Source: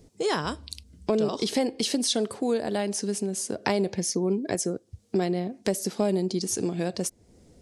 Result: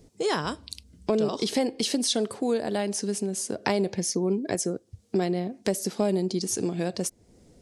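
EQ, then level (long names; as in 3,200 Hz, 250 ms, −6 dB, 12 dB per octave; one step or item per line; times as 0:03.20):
parametric band 74 Hz −7 dB 0.22 octaves
0.0 dB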